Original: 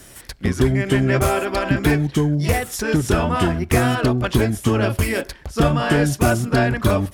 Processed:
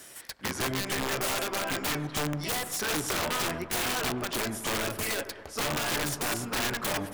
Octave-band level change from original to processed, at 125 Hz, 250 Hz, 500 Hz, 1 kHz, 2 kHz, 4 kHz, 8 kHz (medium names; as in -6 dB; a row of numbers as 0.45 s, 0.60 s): -19.5 dB, -16.0 dB, -13.5 dB, -9.0 dB, -7.5 dB, -1.5 dB, -1.5 dB